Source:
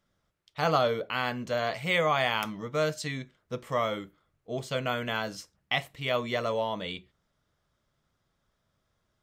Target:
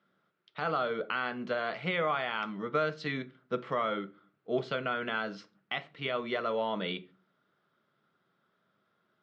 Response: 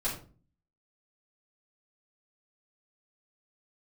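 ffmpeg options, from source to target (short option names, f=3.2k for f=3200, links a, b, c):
-filter_complex "[0:a]alimiter=limit=-23dB:level=0:latency=1:release=314,highpass=f=150:w=0.5412,highpass=f=150:w=1.3066,equalizer=f=200:t=q:w=4:g=4,equalizer=f=380:t=q:w=4:g=7,equalizer=f=1.4k:t=q:w=4:g=9,lowpass=f=4.1k:w=0.5412,lowpass=f=4.1k:w=1.3066,asplit=2[a][b];[1:a]atrim=start_sample=2205[c];[b][c]afir=irnorm=-1:irlink=0,volume=-21dB[d];[a][d]amix=inputs=2:normalize=0"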